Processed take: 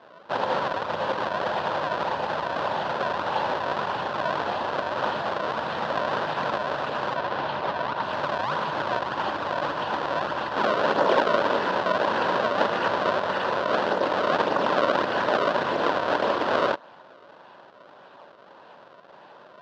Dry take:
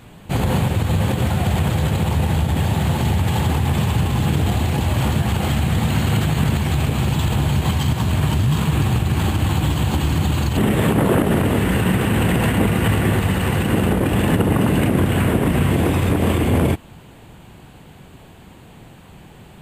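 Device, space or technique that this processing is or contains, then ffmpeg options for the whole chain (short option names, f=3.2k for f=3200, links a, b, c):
circuit-bent sampling toy: -filter_complex "[0:a]acrusher=samples=30:mix=1:aa=0.000001:lfo=1:lforange=48:lforate=1.7,highpass=500,equalizer=f=580:t=q:w=4:g=9,equalizer=f=990:t=q:w=4:g=8,equalizer=f=1.5k:t=q:w=4:g=6,equalizer=f=2.2k:t=q:w=4:g=-8,lowpass=f=4.1k:w=0.5412,lowpass=f=4.1k:w=1.3066,asettb=1/sr,asplit=3[a][b][c];[a]atrim=end=7.164[d];[b]atrim=start=7.16:end=8.03,asetpts=PTS-STARTPTS,afade=t=in:d=0.004:c=qsin,afade=t=out:st=0.866:d=0.004:c=qsin,lowpass=5.2k[e];[c]atrim=start=8.026[f];[d][e]acrossfade=d=0.004:c1=hsin:c2=qsin[g];[g][f]acrossfade=d=0.004:c1=qsin:c2=hsin,volume=-2.5dB"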